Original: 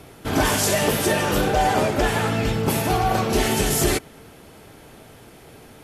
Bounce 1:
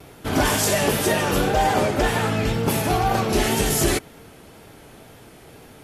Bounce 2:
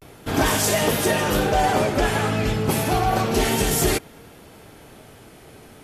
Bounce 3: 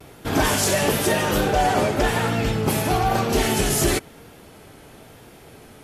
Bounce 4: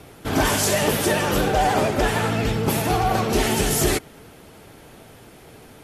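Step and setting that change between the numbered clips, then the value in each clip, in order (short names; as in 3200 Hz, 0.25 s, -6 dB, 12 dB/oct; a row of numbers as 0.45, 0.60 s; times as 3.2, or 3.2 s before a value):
vibrato, rate: 2, 0.32, 1, 13 Hz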